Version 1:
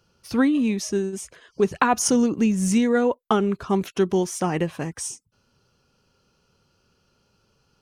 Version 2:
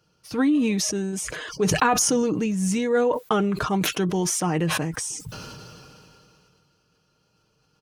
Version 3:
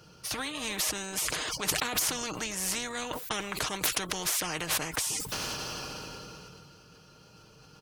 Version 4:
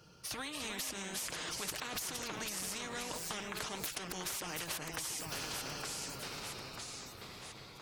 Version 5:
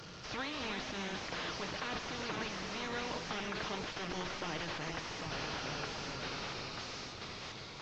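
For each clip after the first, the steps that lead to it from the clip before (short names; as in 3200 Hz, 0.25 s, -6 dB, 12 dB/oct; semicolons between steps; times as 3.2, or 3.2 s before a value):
HPF 40 Hz; comb 6.5 ms, depth 47%; sustainer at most 21 dB/s; gain -2.5 dB
spectral compressor 4:1; gain -1.5 dB
wrapped overs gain 13.5 dB; echoes that change speed 0.256 s, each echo -2 st, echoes 3, each echo -6 dB; compressor, threshold -31 dBFS, peak gain reduction 9 dB; gain -5.5 dB
delta modulation 32 kbps, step -47 dBFS; on a send at -13 dB: reverb RT60 1.3 s, pre-delay 5 ms; on the sum: gain +3.5 dB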